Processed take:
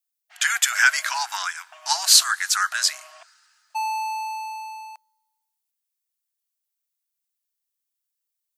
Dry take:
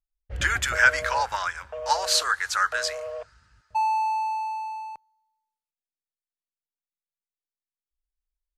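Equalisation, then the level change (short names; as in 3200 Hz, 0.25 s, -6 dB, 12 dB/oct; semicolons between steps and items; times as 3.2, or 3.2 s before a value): brick-wall FIR high-pass 640 Hz; tilt +4.5 dB/oct; -2.0 dB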